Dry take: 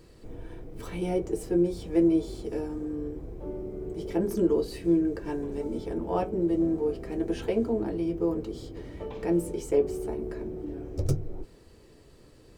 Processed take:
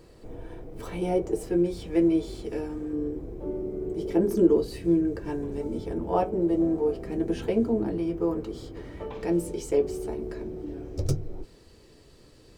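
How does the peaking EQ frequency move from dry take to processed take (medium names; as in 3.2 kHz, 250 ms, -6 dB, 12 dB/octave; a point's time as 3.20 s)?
peaking EQ +5 dB 1.5 oct
680 Hz
from 1.47 s 2.4 kHz
from 2.93 s 330 Hz
from 4.57 s 100 Hz
from 6.13 s 730 Hz
from 7.03 s 170 Hz
from 7.98 s 1.3 kHz
from 9.21 s 4.6 kHz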